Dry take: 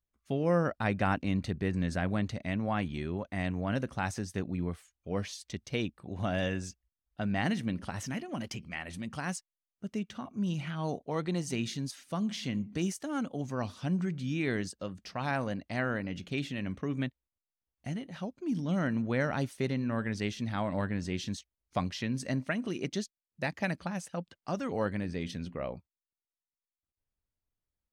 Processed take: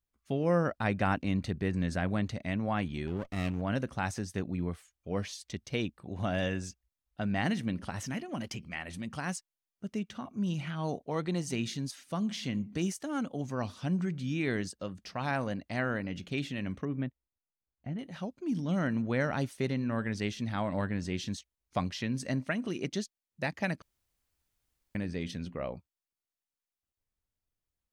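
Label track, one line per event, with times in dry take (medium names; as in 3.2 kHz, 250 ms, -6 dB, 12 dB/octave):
3.070000	3.620000	comb filter that takes the minimum delay 0.33 ms
16.850000	17.990000	tape spacing loss at 10 kHz 38 dB
23.820000	24.950000	room tone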